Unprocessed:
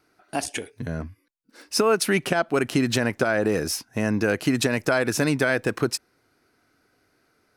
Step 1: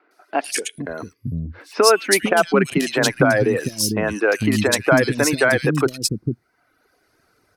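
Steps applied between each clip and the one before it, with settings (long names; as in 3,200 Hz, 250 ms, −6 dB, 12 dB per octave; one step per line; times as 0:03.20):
reverb reduction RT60 0.96 s
three-band delay without the direct sound mids, highs, lows 110/450 ms, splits 280/2,800 Hz
level +7.5 dB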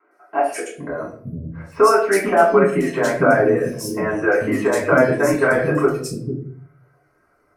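drawn EQ curve 150 Hz 0 dB, 640 Hz +11 dB, 1,800 Hz +7 dB, 3,800 Hz −12 dB, 7,000 Hz 0 dB
convolution reverb RT60 0.55 s, pre-delay 3 ms, DRR −6.5 dB
level −17.5 dB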